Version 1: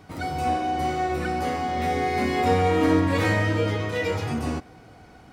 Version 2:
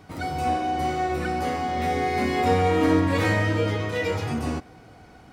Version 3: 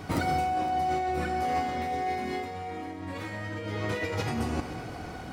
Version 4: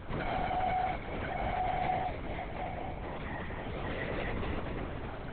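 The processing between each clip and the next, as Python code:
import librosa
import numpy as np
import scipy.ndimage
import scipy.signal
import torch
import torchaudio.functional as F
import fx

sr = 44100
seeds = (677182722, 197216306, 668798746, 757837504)

y1 = x
y2 = fx.over_compress(y1, sr, threshold_db=-33.0, ratio=-1.0)
y2 = y2 + 10.0 ** (-17.0 / 20.0) * np.pad(y2, (int(514 * sr / 1000.0), 0))[:len(y2)]
y2 = fx.rev_schroeder(y2, sr, rt60_s=1.2, comb_ms=31, drr_db=7.0)
y3 = 10.0 ** (-27.5 / 20.0) * np.tanh(y2 / 10.0 ** (-27.5 / 20.0))
y3 = fx.echo_feedback(y3, sr, ms=243, feedback_pct=58, wet_db=-4.5)
y3 = fx.lpc_vocoder(y3, sr, seeds[0], excitation='whisper', order=10)
y3 = F.gain(torch.from_numpy(y3), -3.0).numpy()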